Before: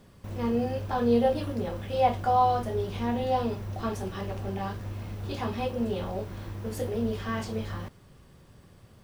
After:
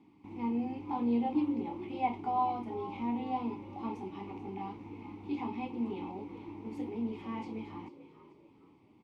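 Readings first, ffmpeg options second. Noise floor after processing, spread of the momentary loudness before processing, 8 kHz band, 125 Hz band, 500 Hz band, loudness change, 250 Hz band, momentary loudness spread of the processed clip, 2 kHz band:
-62 dBFS, 13 LU, under -20 dB, -16.0 dB, -13.5 dB, -7.0 dB, -2.5 dB, 14 LU, -10.0 dB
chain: -filter_complex "[0:a]asplit=3[a][b][c];[a]bandpass=f=300:t=q:w=8,volume=0dB[d];[b]bandpass=f=870:t=q:w=8,volume=-6dB[e];[c]bandpass=f=2.24k:t=q:w=8,volume=-9dB[f];[d][e][f]amix=inputs=3:normalize=0,asplit=4[g][h][i][j];[h]adelay=439,afreqshift=58,volume=-14.5dB[k];[i]adelay=878,afreqshift=116,volume=-24.1dB[l];[j]adelay=1317,afreqshift=174,volume=-33.8dB[m];[g][k][l][m]amix=inputs=4:normalize=0,volume=7.5dB"

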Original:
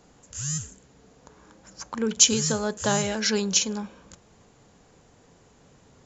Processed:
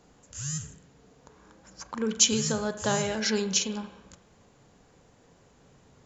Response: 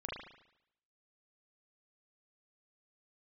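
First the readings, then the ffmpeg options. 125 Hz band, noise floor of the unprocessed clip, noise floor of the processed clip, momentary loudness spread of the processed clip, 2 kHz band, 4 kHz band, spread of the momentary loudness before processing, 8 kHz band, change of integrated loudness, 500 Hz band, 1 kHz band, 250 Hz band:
-2.5 dB, -58 dBFS, -60 dBFS, 22 LU, -2.5 dB, -3.0 dB, 22 LU, n/a, -3.5 dB, -2.0 dB, -2.5 dB, -2.5 dB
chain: -filter_complex "[0:a]asplit=2[a][b];[1:a]atrim=start_sample=2205,lowpass=6.7k[c];[b][c]afir=irnorm=-1:irlink=0,volume=-8dB[d];[a][d]amix=inputs=2:normalize=0,volume=-4.5dB"

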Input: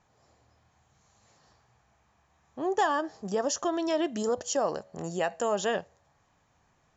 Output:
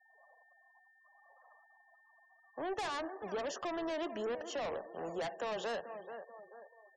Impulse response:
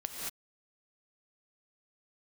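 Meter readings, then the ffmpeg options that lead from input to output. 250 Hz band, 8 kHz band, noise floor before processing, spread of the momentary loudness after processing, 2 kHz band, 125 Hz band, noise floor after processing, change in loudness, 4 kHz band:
-11.0 dB, n/a, -69 dBFS, 14 LU, -7.5 dB, -12.5 dB, -68 dBFS, -10.0 dB, -7.0 dB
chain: -filter_complex "[0:a]acrossover=split=420 3000:gain=0.0794 1 0.0891[a][b][c];[a][b][c]amix=inputs=3:normalize=0,volume=32.5dB,asoftclip=hard,volume=-32.5dB,highpass=51,asplit=2[d][e];[e]adelay=436,lowpass=f=1.8k:p=1,volume=-14dB,asplit=2[f][g];[g]adelay=436,lowpass=f=1.8k:p=1,volume=0.37,asplit=2[h][i];[i]adelay=436,lowpass=f=1.8k:p=1,volume=0.37,asplit=2[j][k];[k]adelay=436,lowpass=f=1.8k:p=1,volume=0.37[l];[d][f][h][j][l]amix=inputs=5:normalize=0,asoftclip=type=tanh:threshold=-35dB,acrossover=split=370|3000[m][n][o];[n]acompressor=threshold=-54dB:ratio=1.5[p];[m][p][o]amix=inputs=3:normalize=0,asplit=2[q][r];[1:a]atrim=start_sample=2205,lowpass=2.3k[s];[r][s]afir=irnorm=-1:irlink=0,volume=-16dB[t];[q][t]amix=inputs=2:normalize=0,aeval=exprs='val(0)+0.000355*sin(2*PI*1800*n/s)':c=same,afftfilt=real='re*gte(hypot(re,im),0.00158)':imag='im*gte(hypot(re,im),0.00158)':win_size=1024:overlap=0.75,adynamicequalizer=threshold=0.00112:dfrequency=4200:dqfactor=0.7:tfrequency=4200:tqfactor=0.7:attack=5:release=100:ratio=0.375:range=2:mode=cutabove:tftype=highshelf,volume=4.5dB"

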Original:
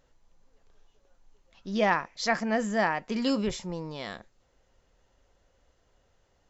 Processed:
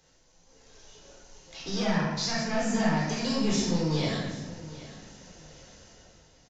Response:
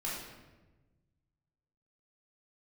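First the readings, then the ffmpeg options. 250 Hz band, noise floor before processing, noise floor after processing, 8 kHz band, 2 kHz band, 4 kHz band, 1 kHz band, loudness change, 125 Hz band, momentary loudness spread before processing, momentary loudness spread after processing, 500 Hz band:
+3.0 dB, -69 dBFS, -62 dBFS, n/a, -3.5 dB, +5.0 dB, -4.0 dB, +0.5 dB, +10.0 dB, 14 LU, 18 LU, -1.5 dB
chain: -filter_complex "[0:a]highpass=f=95:p=1,equalizer=f=5.9k:t=o:w=1.5:g=13.5,bandreject=f=1.2k:w=11,acrossover=split=180[a][b];[b]acompressor=threshold=-40dB:ratio=5[c];[a][c]amix=inputs=2:normalize=0,acrossover=split=220[d][e];[d]alimiter=level_in=21.5dB:limit=-24dB:level=0:latency=1,volume=-21.5dB[f];[f][e]amix=inputs=2:normalize=0,dynaudnorm=f=100:g=13:m=10dB,asoftclip=type=tanh:threshold=-28dB,aphaser=in_gain=1:out_gain=1:delay=2:decay=0.26:speed=2:type=sinusoidal,aecho=1:1:778|1556|2334:0.141|0.0381|0.0103[g];[1:a]atrim=start_sample=2205[h];[g][h]afir=irnorm=-1:irlink=0,aresample=16000,aresample=44100,volume=1.5dB"

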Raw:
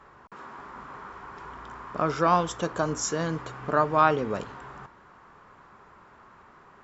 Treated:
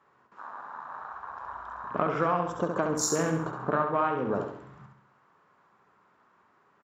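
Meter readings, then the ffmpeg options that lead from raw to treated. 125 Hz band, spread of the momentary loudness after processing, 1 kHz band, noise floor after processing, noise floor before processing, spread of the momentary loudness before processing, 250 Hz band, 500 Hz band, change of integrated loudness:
-2.0 dB, 15 LU, -4.0 dB, -66 dBFS, -54 dBFS, 20 LU, -0.5 dB, -1.5 dB, -4.0 dB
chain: -af "afwtdn=0.0178,highpass=130,acompressor=threshold=-27dB:ratio=10,aecho=1:1:68|136|204|272|340|408:0.531|0.244|0.112|0.0517|0.0238|0.0109,volume=4dB"

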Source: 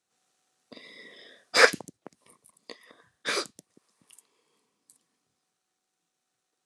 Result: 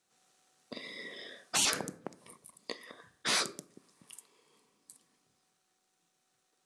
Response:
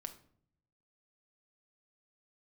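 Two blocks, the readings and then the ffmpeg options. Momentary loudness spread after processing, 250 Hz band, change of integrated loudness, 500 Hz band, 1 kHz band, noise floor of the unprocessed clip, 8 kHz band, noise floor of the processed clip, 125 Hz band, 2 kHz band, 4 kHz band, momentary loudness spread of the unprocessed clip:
24 LU, -2.0 dB, -9.5 dB, -14.0 dB, -8.5 dB, -82 dBFS, +3.0 dB, -78 dBFS, +0.5 dB, -11.5 dB, -2.5 dB, 20 LU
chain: -filter_complex "[0:a]asplit=2[a][b];[1:a]atrim=start_sample=2205,lowshelf=f=100:g=3.5[c];[b][c]afir=irnorm=-1:irlink=0,volume=-1dB[d];[a][d]amix=inputs=2:normalize=0,afftfilt=real='re*lt(hypot(re,im),0.126)':imag='im*lt(hypot(re,im),0.126)':win_size=1024:overlap=0.75"

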